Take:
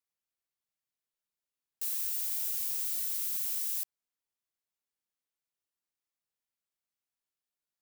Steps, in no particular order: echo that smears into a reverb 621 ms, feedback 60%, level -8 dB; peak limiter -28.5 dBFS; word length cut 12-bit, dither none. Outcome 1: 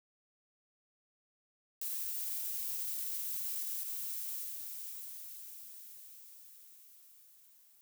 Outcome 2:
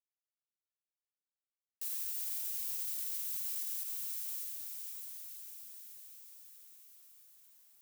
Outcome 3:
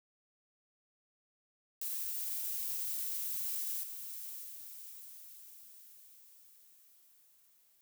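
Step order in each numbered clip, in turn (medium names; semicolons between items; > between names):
echo that smears into a reverb > peak limiter > word length cut; echo that smears into a reverb > word length cut > peak limiter; peak limiter > echo that smears into a reverb > word length cut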